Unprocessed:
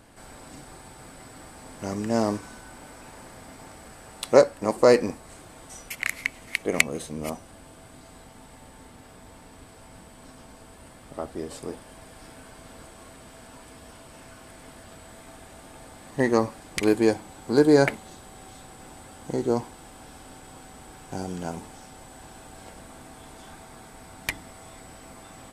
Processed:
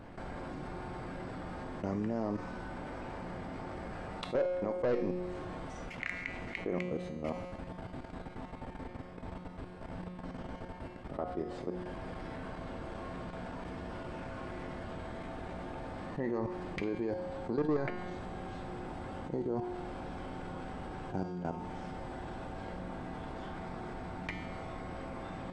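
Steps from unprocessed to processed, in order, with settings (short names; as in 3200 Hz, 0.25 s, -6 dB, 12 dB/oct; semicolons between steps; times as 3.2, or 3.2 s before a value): level quantiser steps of 16 dB; soft clip -18.5 dBFS, distortion -9 dB; tape spacing loss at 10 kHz 32 dB; resonator 180 Hz, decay 1.1 s, mix 80%; fast leveller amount 50%; gain +7 dB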